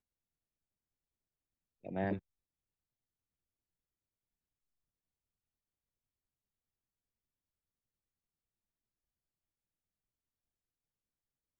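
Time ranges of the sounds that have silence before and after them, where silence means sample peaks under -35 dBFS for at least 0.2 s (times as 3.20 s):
1.87–2.15 s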